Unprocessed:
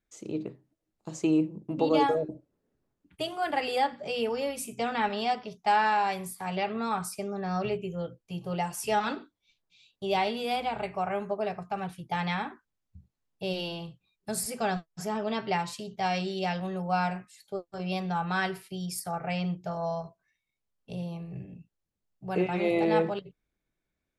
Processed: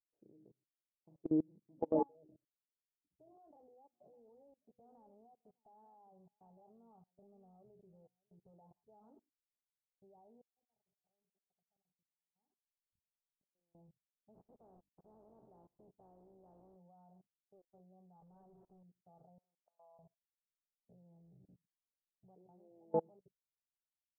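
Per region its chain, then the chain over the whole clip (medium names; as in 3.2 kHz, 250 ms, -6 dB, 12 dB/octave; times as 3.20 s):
3.32–8.71 s: transient shaper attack -9 dB, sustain -4 dB + compression 2.5:1, threshold -38 dBFS + delay 606 ms -13 dB
10.41–13.75 s: square tremolo 2.4 Hz, depth 65%, duty 65% + compressor with a negative ratio -41 dBFS + inverted gate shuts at -37 dBFS, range -26 dB
14.33–16.75 s: spectral contrast reduction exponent 0.39 + hum notches 50/100/150/200/250/300 Hz + dynamic bell 350 Hz, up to +4 dB, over -52 dBFS, Q 3.4
18.20–18.83 s: one-bit comparator + comb 5.3 ms, depth 51%
19.38–19.99 s: high-pass 1.3 kHz + treble shelf 3.9 kHz +8 dB
whole clip: steep low-pass 850 Hz 36 dB/octave; level held to a coarse grid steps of 23 dB; upward expansion 1.5:1, over -56 dBFS; trim -6 dB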